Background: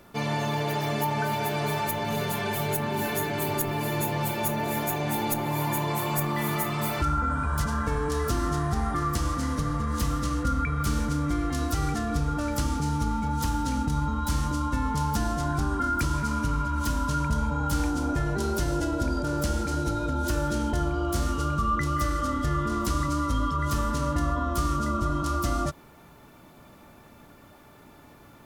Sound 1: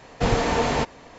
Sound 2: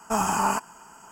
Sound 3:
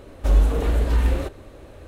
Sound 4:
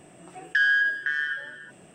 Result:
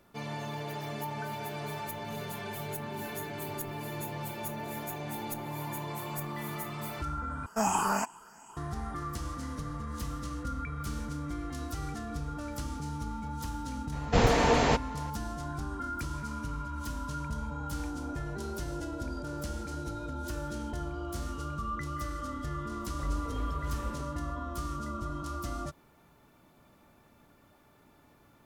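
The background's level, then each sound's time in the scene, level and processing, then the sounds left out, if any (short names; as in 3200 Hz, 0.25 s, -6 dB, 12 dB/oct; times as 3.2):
background -10 dB
7.46 replace with 2 -5 dB + moving spectral ripple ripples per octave 0.63, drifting +2.7 Hz, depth 8 dB
13.92 add 1 -2 dB
22.74 add 3 -18 dB
not used: 4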